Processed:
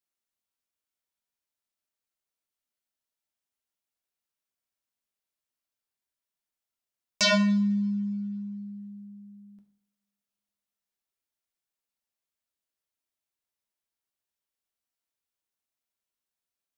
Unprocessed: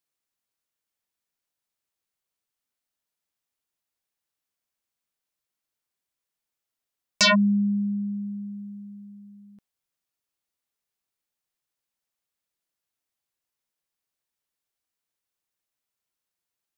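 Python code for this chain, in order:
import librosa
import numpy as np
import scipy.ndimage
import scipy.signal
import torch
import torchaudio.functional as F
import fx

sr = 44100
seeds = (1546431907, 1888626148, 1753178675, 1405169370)

y = fx.rev_double_slope(x, sr, seeds[0], early_s=0.59, late_s=2.3, knee_db=-27, drr_db=4.0)
y = y * 10.0 ** (-6.0 / 20.0)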